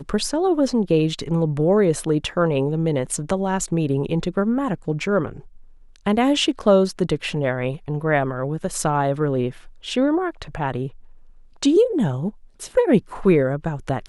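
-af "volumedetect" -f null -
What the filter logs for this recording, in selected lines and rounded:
mean_volume: -21.1 dB
max_volume: -4.0 dB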